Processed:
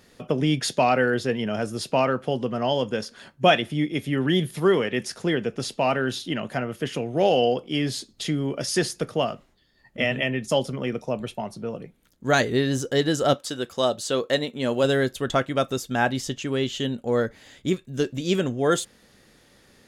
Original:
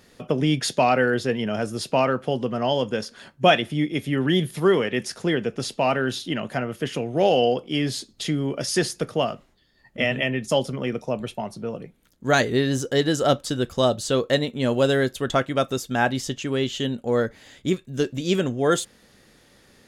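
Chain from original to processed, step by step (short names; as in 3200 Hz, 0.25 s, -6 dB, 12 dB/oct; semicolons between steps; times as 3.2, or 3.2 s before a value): 13.33–14.83 HPF 500 Hz -> 180 Hz 6 dB/oct; gain -1 dB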